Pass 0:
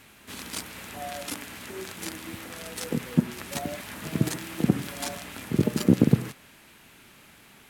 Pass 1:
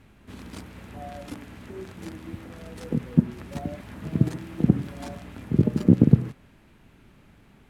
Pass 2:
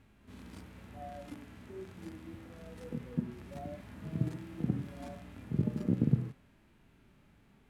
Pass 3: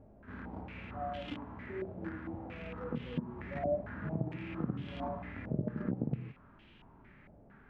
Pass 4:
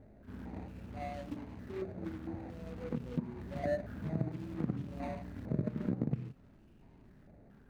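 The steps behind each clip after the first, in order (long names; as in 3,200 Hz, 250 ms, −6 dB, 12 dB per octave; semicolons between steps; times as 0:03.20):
spectral tilt −3.5 dB per octave; level −5 dB
harmonic and percussive parts rebalanced percussive −11 dB; level −5.5 dB
downward compressor 4 to 1, threshold −37 dBFS, peak gain reduction 14.5 dB; low-pass on a step sequencer 4.4 Hz 630–3,100 Hz; level +4 dB
running median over 41 samples; level +1 dB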